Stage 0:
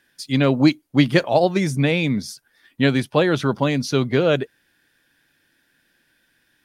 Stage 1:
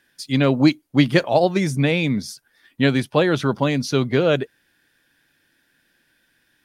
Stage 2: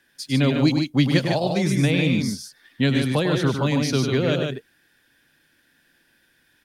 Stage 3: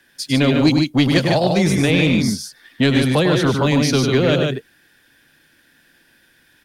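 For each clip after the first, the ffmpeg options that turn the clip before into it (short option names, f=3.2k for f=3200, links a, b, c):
-af anull
-filter_complex "[0:a]acrossover=split=240|3000[a][b][c];[b]acompressor=threshold=-26dB:ratio=2.5[d];[a][d][c]amix=inputs=3:normalize=0,asplit=2[e][f];[f]aecho=0:1:102|148.7:0.447|0.562[g];[e][g]amix=inputs=2:normalize=0"
-filter_complex "[0:a]aeval=exprs='0.562*(cos(1*acos(clip(val(0)/0.562,-1,1)))-cos(1*PI/2))+0.0501*(cos(5*acos(clip(val(0)/0.562,-1,1)))-cos(5*PI/2))':c=same,acrossover=split=170|960[a][b][c];[a]aeval=exprs='0.0631*(abs(mod(val(0)/0.0631+3,4)-2)-1)':c=same[d];[d][b][c]amix=inputs=3:normalize=0,volume=3.5dB"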